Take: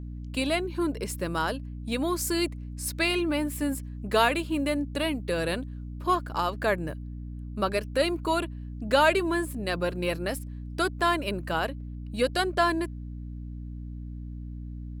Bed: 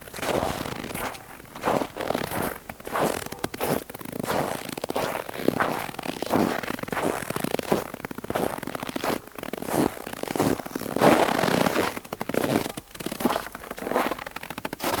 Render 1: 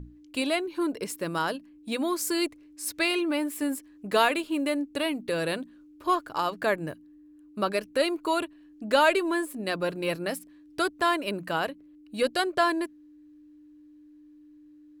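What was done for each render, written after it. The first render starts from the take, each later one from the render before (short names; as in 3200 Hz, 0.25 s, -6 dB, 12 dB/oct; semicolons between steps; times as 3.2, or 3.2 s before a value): notches 60/120/180/240 Hz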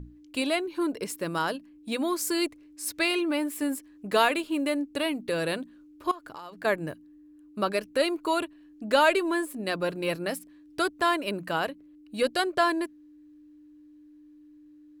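6.11–6.65 compressor 8:1, threshold -38 dBFS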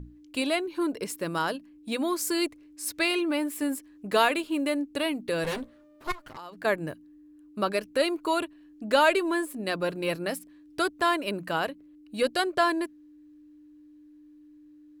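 5.44–6.37 minimum comb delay 7.7 ms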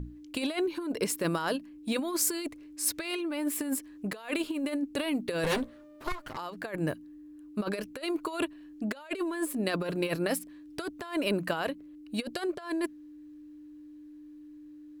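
negative-ratio compressor -30 dBFS, ratio -0.5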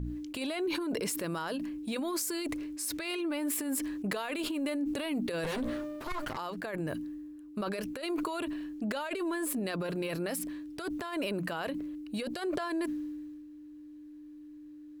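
limiter -26.5 dBFS, peak gain reduction 11 dB; sustainer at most 27 dB/s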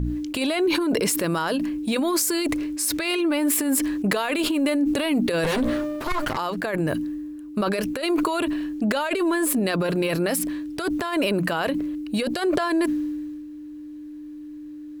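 gain +11 dB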